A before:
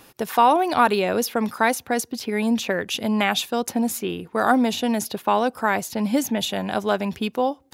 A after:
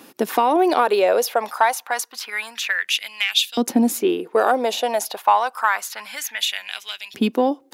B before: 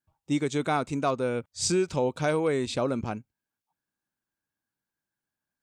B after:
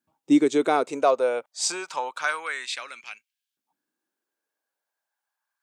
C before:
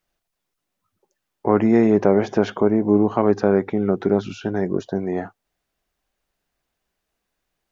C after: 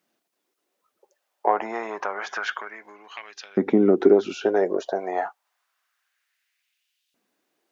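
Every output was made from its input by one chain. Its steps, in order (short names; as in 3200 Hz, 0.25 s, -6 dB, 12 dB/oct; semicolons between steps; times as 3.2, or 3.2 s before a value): compressor 6:1, threshold -17 dBFS; soft clip -8 dBFS; LFO high-pass saw up 0.28 Hz 230–3400 Hz; gain +2.5 dB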